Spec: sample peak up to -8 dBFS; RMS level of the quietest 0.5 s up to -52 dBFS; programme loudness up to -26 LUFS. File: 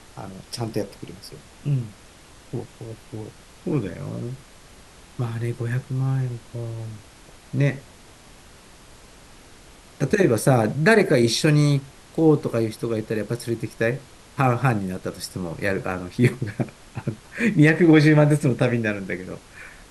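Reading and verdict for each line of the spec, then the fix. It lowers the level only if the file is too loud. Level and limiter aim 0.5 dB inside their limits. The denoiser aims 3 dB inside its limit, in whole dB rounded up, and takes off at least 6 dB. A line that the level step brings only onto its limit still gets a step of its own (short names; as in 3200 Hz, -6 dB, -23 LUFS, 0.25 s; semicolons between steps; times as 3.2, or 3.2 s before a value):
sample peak -3.5 dBFS: fail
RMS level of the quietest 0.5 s -48 dBFS: fail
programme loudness -22.5 LUFS: fail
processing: denoiser 6 dB, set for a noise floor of -48 dBFS; gain -4 dB; limiter -8.5 dBFS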